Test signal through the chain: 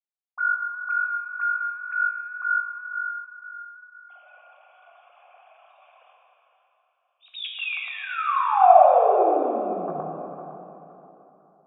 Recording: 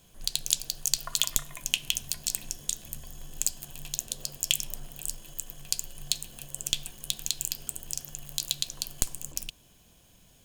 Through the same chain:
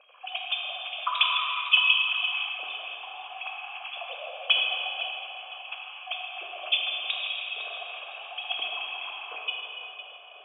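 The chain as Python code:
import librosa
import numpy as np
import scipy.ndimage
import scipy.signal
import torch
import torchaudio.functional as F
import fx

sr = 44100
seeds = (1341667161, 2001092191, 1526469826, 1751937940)

p1 = fx.sine_speech(x, sr)
p2 = fx.peak_eq(p1, sr, hz=680.0, db=-3.0, octaves=0.39)
p3 = fx.rider(p2, sr, range_db=4, speed_s=2.0)
p4 = p2 + (p3 * 10.0 ** (3.0 / 20.0))
p5 = fx.vowel_filter(p4, sr, vowel='a')
p6 = p5 + fx.echo_thinned(p5, sr, ms=507, feedback_pct=30, hz=500.0, wet_db=-12, dry=0)
p7 = fx.rev_plate(p6, sr, seeds[0], rt60_s=3.3, hf_ratio=0.7, predelay_ms=0, drr_db=-2.0)
y = p7 * 10.0 ** (6.0 / 20.0)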